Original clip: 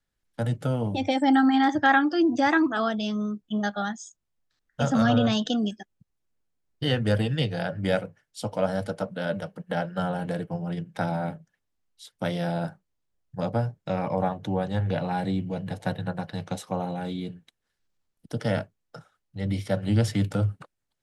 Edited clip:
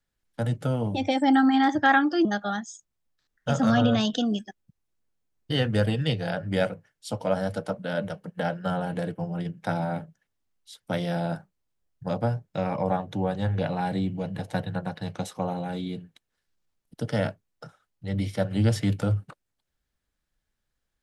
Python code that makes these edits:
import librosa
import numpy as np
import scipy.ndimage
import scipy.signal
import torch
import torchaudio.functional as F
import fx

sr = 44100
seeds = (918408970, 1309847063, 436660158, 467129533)

y = fx.edit(x, sr, fx.cut(start_s=2.25, length_s=1.32), tone=tone)